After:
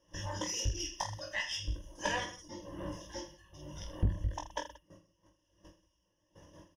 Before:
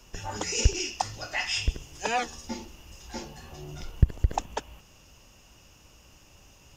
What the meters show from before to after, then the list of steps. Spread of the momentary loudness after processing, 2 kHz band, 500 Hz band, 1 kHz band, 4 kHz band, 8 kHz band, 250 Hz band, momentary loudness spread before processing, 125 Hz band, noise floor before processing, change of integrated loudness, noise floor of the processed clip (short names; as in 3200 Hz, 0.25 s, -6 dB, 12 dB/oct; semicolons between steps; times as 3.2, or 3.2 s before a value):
13 LU, -6.0 dB, -6.0 dB, -8.5 dB, -6.0 dB, -6.5 dB, -5.0 dB, 16 LU, -8.0 dB, -56 dBFS, -7.5 dB, -78 dBFS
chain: wind noise 520 Hz -45 dBFS; reverb removal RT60 1.1 s; gate -48 dBFS, range -15 dB; ripple EQ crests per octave 1.2, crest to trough 17 dB; tremolo triangle 1.1 Hz, depth 60%; on a send: reverse bouncing-ball echo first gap 20 ms, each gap 1.3×, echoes 5; on the sum: tube stage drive 16 dB, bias 0.35; gain -6 dB